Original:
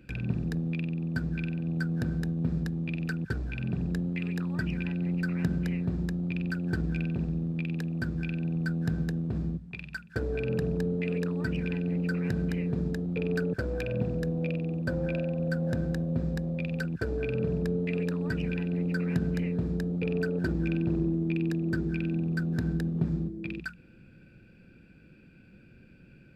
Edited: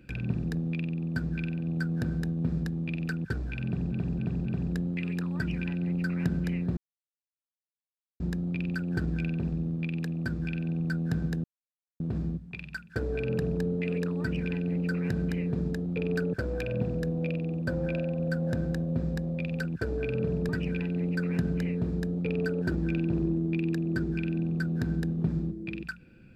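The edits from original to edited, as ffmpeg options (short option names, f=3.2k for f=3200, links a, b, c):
-filter_complex "[0:a]asplit=7[a][b][c][d][e][f][g];[a]atrim=end=3.922[h];[b]atrim=start=3.648:end=3.922[i];[c]atrim=start=3.648:end=3.922[j];[d]atrim=start=3.648:end=5.96,asetpts=PTS-STARTPTS,afade=t=out:st=2.308:d=0.004:c=hsin,apad=pad_dur=1.43[k];[e]atrim=start=5.96:end=9.2,asetpts=PTS-STARTPTS,afade=t=in:d=0.004:c=hsin,afade=t=out:st=3.236:d=0.004:c=hsin,apad=pad_dur=0.56[l];[f]atrim=start=9.2:end=17.692,asetpts=PTS-STARTPTS,afade=t=in:d=0.004:c=hsin[m];[g]atrim=start=18.258[n];[h][i]acrossfade=d=0.004:c1=hsin:c2=hsin[o];[o][j]acrossfade=d=0.004:c1=hsin:c2=hsin[p];[k][l][m]concat=n=3:v=0:a=1[q];[p][q]acrossfade=d=0.004:c1=hsin:c2=hsin[r];[r][n]acrossfade=d=0.004:c1=hsin:c2=hsin"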